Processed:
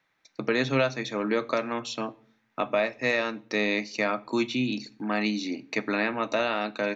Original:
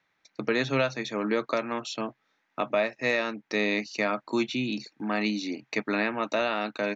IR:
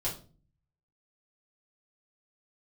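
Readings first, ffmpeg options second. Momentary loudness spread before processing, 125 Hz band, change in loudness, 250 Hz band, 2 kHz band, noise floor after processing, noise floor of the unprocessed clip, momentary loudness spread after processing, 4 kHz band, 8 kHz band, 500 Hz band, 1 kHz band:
8 LU, +1.5 dB, +1.0 dB, +1.0 dB, +1.0 dB, -72 dBFS, -75 dBFS, 8 LU, +1.0 dB, n/a, +0.5 dB, +0.5 dB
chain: -filter_complex "[0:a]asplit=2[a][b];[1:a]atrim=start_sample=2205,asetrate=32193,aresample=44100[c];[b][c]afir=irnorm=-1:irlink=0,volume=-20.5dB[d];[a][d]amix=inputs=2:normalize=0"

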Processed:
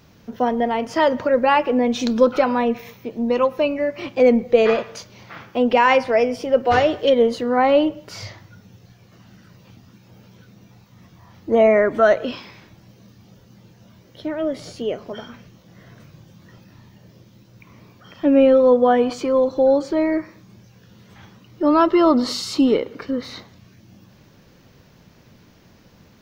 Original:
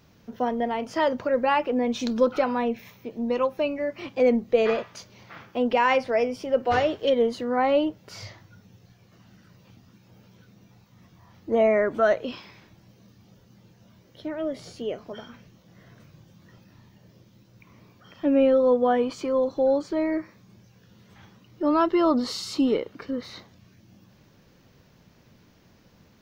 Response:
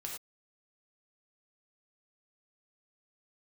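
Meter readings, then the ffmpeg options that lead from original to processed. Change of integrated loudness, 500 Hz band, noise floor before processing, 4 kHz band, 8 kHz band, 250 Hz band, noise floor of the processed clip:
+6.0 dB, +6.0 dB, -58 dBFS, +6.0 dB, n/a, +6.0 dB, -52 dBFS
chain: -filter_complex "[0:a]asplit=2[a][b];[1:a]atrim=start_sample=2205,lowpass=3.4k,adelay=109[c];[b][c]afir=irnorm=-1:irlink=0,volume=-21dB[d];[a][d]amix=inputs=2:normalize=0,volume=6dB"

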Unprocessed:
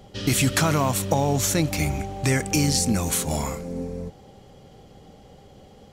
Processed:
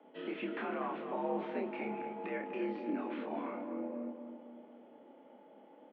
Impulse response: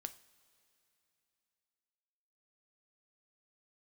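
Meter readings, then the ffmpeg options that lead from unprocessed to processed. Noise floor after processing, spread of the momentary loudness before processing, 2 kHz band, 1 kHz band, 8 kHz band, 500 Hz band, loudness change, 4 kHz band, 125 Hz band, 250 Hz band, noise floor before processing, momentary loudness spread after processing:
-59 dBFS, 12 LU, -15.5 dB, -11.5 dB, under -40 dB, -10.5 dB, -16.0 dB, -27.5 dB, -32.5 dB, -13.0 dB, -50 dBFS, 21 LU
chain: -filter_complex "[0:a]acrossover=split=410|950|2200[a][b][c][d];[d]aeval=exprs='(mod(4.47*val(0)+1,2)-1)/4.47':c=same[e];[a][b][c][e]amix=inputs=4:normalize=0,alimiter=limit=-17dB:level=0:latency=1:release=124,flanger=delay=8.5:depth=9:regen=-79:speed=1.2:shape=triangular,aemphasis=mode=reproduction:type=75fm,flanger=delay=3:depth=4.3:regen=-81:speed=0.43:shape=sinusoidal,asplit=2[f][g];[g]adelay=28,volume=-4dB[h];[f][h]amix=inputs=2:normalize=0,asplit=2[i][j];[j]adelay=247,lowpass=f=1.5k:p=1,volume=-7dB,asplit=2[k][l];[l]adelay=247,lowpass=f=1.5k:p=1,volume=0.53,asplit=2[m][n];[n]adelay=247,lowpass=f=1.5k:p=1,volume=0.53,asplit=2[o][p];[p]adelay=247,lowpass=f=1.5k:p=1,volume=0.53,asplit=2[q][r];[r]adelay=247,lowpass=f=1.5k:p=1,volume=0.53,asplit=2[s][t];[t]adelay=247,lowpass=f=1.5k:p=1,volume=0.53[u];[i][k][m][o][q][s][u]amix=inputs=7:normalize=0,highpass=f=180:t=q:w=0.5412,highpass=f=180:t=q:w=1.307,lowpass=f=2.9k:t=q:w=0.5176,lowpass=f=2.9k:t=q:w=0.7071,lowpass=f=2.9k:t=q:w=1.932,afreqshift=66,volume=-1.5dB"

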